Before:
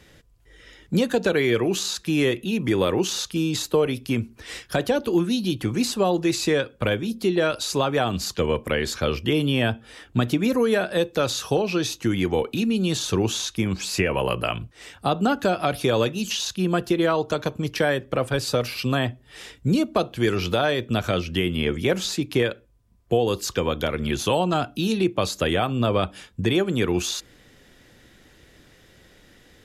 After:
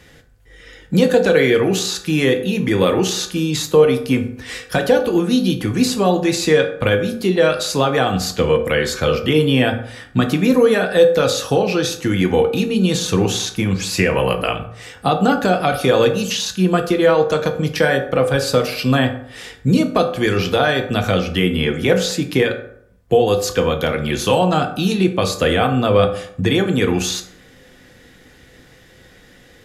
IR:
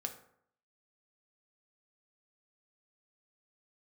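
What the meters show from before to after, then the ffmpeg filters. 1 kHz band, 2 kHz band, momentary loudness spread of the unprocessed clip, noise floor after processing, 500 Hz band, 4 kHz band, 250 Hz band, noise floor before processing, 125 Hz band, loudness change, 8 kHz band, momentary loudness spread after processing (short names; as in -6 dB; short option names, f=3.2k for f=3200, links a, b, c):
+6.5 dB, +7.0 dB, 5 LU, -47 dBFS, +7.5 dB, +5.0 dB, +6.0 dB, -55 dBFS, +6.0 dB, +6.5 dB, +5.0 dB, 6 LU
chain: -filter_complex "[0:a]equalizer=f=1.9k:w=3.6:g=3[a];[1:a]atrim=start_sample=2205[b];[a][b]afir=irnorm=-1:irlink=0,volume=6.5dB"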